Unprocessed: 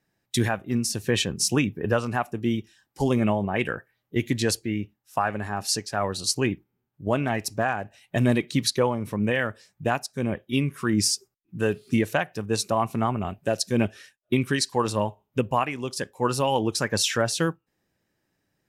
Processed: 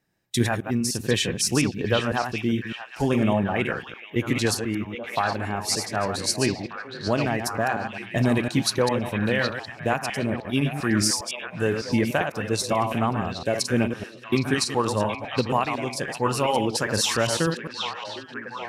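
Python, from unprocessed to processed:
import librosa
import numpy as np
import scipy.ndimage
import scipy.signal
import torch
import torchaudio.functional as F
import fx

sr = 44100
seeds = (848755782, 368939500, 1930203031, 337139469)

y = fx.reverse_delay(x, sr, ms=101, wet_db=-6.5)
y = fx.echo_stepped(y, sr, ms=767, hz=2900.0, octaves=-0.7, feedback_pct=70, wet_db=-3)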